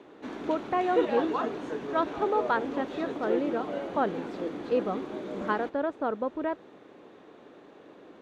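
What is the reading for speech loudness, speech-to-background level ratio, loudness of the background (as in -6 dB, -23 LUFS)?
-31.0 LUFS, 3.0 dB, -34.0 LUFS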